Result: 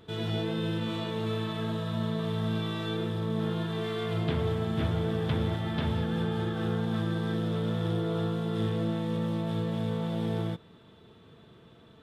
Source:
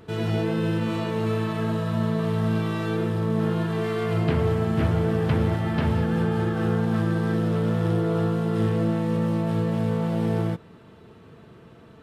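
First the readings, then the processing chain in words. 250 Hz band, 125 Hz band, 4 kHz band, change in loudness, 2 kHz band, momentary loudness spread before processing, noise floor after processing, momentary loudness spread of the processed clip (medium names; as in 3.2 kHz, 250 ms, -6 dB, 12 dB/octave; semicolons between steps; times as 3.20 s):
-6.5 dB, -6.5 dB, +1.5 dB, -6.5 dB, -6.0 dB, 3 LU, -55 dBFS, 3 LU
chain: peaking EQ 3.5 kHz +14 dB 0.23 oct; trim -6.5 dB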